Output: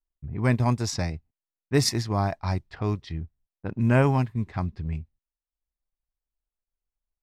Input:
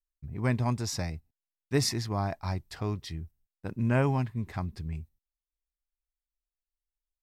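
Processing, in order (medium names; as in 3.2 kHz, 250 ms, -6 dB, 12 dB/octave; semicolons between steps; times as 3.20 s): level-controlled noise filter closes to 1.1 kHz, open at -26 dBFS; transient shaper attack -2 dB, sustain -7 dB; trim +6 dB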